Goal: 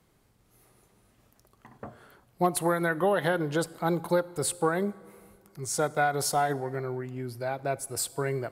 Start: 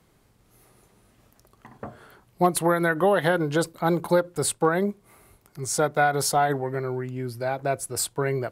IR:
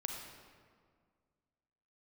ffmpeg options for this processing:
-filter_complex "[0:a]asplit=2[s0][s1];[1:a]atrim=start_sample=2205,asetrate=38808,aresample=44100,highshelf=f=6700:g=9[s2];[s1][s2]afir=irnorm=-1:irlink=0,volume=0.141[s3];[s0][s3]amix=inputs=2:normalize=0,volume=0.531"

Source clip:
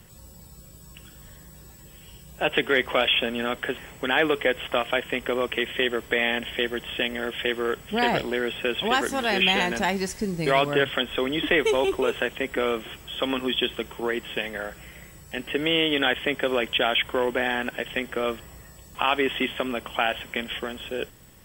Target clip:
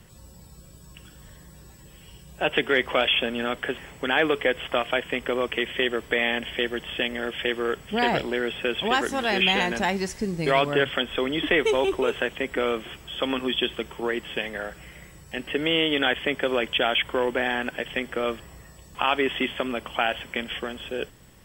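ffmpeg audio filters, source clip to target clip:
-af "highshelf=f=11000:g=-9"

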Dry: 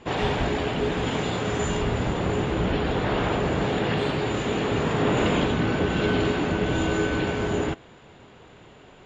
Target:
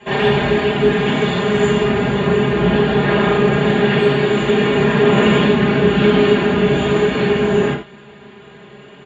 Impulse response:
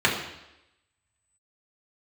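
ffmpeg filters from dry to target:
-filter_complex "[0:a]aecho=1:1:4.9:0.89[s0];[1:a]atrim=start_sample=2205,atrim=end_sample=4410[s1];[s0][s1]afir=irnorm=-1:irlink=0,volume=0.299"

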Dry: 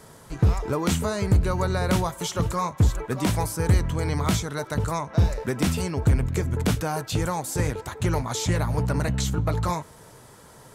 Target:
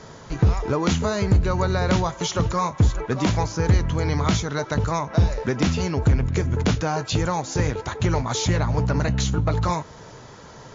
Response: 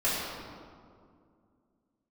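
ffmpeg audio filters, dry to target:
-filter_complex "[0:a]asplit=2[s0][s1];[s1]acompressor=threshold=0.0316:ratio=6,volume=1.19[s2];[s0][s2]amix=inputs=2:normalize=0" -ar 16000 -c:a libmp3lame -b:a 48k

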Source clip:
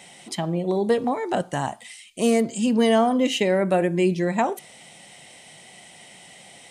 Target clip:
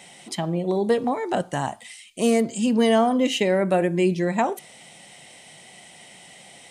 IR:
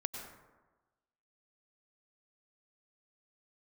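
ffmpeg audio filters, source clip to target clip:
-af "bandreject=f=50:t=h:w=6,bandreject=f=100:t=h:w=6"

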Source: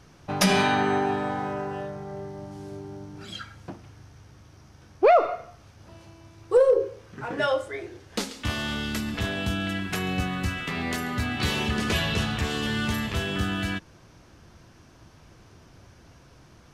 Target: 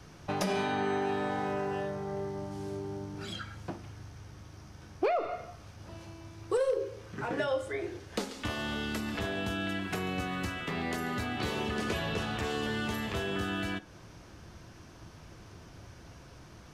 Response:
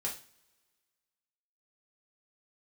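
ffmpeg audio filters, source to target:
-filter_complex "[0:a]acrossover=split=320|710|1600[s0][s1][s2][s3];[s0]acompressor=threshold=0.01:ratio=4[s4];[s1]acompressor=threshold=0.0178:ratio=4[s5];[s2]acompressor=threshold=0.00631:ratio=4[s6];[s3]acompressor=threshold=0.00708:ratio=4[s7];[s4][s5][s6][s7]amix=inputs=4:normalize=0,asplit=2[s8][s9];[1:a]atrim=start_sample=2205[s10];[s9][s10]afir=irnorm=-1:irlink=0,volume=0.211[s11];[s8][s11]amix=inputs=2:normalize=0"

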